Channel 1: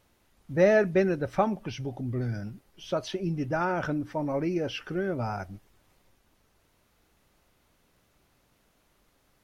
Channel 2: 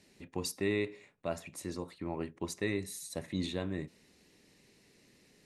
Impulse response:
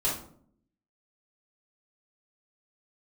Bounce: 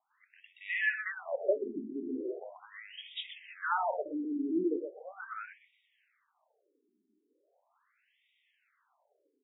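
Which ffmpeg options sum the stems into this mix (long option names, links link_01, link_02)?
-filter_complex "[0:a]highshelf=frequency=3500:gain=5.5,adelay=100,volume=-1dB,asplit=3[link_01][link_02][link_03];[link_02]volume=-17.5dB[link_04];[link_03]volume=-8dB[link_05];[1:a]bandreject=frequency=3600:width=8.8,aeval=exprs='clip(val(0),-1,0.0355)':channel_layout=same,volume=-2.5dB,asplit=2[link_06][link_07];[link_07]volume=-5dB[link_08];[2:a]atrim=start_sample=2205[link_09];[link_04][link_09]afir=irnorm=-1:irlink=0[link_10];[link_05][link_08]amix=inputs=2:normalize=0,aecho=0:1:124|248|372|496:1|0.25|0.0625|0.0156[link_11];[link_01][link_06][link_10][link_11]amix=inputs=4:normalize=0,afftfilt=real='re*between(b*sr/1024,280*pow(2700/280,0.5+0.5*sin(2*PI*0.39*pts/sr))/1.41,280*pow(2700/280,0.5+0.5*sin(2*PI*0.39*pts/sr))*1.41)':imag='im*between(b*sr/1024,280*pow(2700/280,0.5+0.5*sin(2*PI*0.39*pts/sr))/1.41,280*pow(2700/280,0.5+0.5*sin(2*PI*0.39*pts/sr))*1.41)':win_size=1024:overlap=0.75"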